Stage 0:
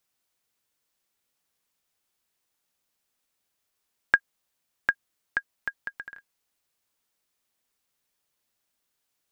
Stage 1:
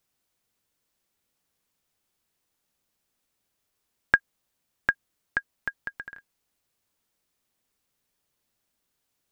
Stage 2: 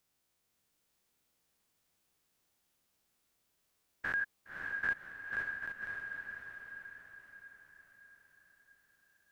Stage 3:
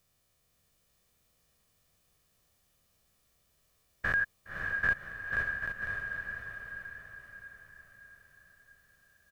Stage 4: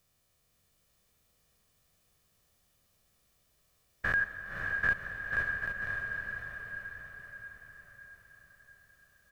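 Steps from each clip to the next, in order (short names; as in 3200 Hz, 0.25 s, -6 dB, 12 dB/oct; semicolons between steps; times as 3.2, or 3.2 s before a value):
low shelf 440 Hz +7 dB
stepped spectrum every 0.1 s; diffused feedback echo 0.563 s, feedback 51%, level -4 dB
low shelf 230 Hz +9.5 dB; comb 1.7 ms, depth 45%; gain +4.5 dB
reverb RT60 5.6 s, pre-delay 79 ms, DRR 10 dB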